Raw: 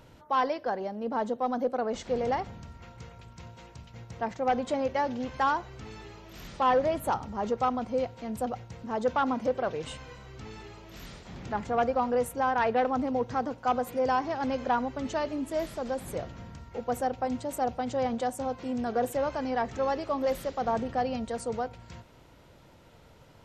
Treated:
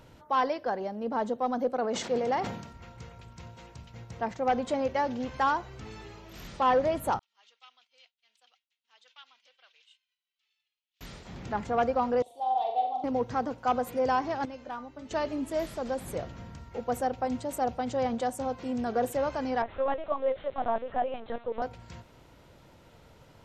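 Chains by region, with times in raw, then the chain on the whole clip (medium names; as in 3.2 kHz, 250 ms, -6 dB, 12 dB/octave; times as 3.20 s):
1.77–2.73 s: high-pass 160 Hz + decay stretcher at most 61 dB/s
7.19–11.01 s: expander -33 dBFS + ladder band-pass 3.7 kHz, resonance 45%
12.22–13.04 s: two resonant band-passes 1.6 kHz, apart 2.3 oct + comb 2.6 ms, depth 34% + flutter echo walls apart 7.3 m, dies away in 0.54 s
14.45–15.11 s: feedback comb 300 Hz, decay 0.26 s, mix 80% + hard clipper -30.5 dBFS
19.62–21.62 s: high-pass 320 Hz 24 dB/octave + LPC vocoder at 8 kHz pitch kept
whole clip: none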